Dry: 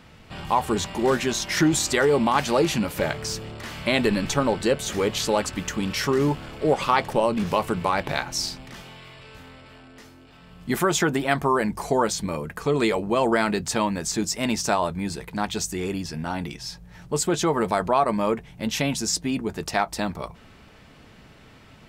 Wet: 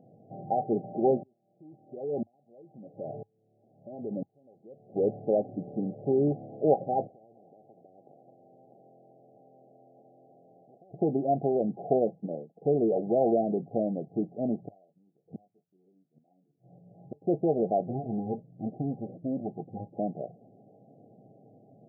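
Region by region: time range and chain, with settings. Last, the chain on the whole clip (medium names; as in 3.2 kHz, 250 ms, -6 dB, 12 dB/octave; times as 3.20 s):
1.23–4.96 s: compression 4:1, threshold -22 dBFS + sawtooth tremolo in dB swelling 1 Hz, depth 38 dB
7.07–10.94 s: high-pass 210 Hz + compression 5:1, threshold -30 dBFS + spectrum-flattening compressor 10:1
12.15–12.62 s: high-pass 150 Hz 24 dB/octave + upward expansion 2.5:1, over -40 dBFS
14.67–17.22 s: doubling 21 ms -5 dB + inverted gate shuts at -22 dBFS, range -35 dB
17.80–19.96 s: comb filter that takes the minimum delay 0.76 ms + Shepard-style phaser rising 1.4 Hz
whole clip: FFT band-pass 100–810 Hz; bass shelf 390 Hz -8 dB; trim +1.5 dB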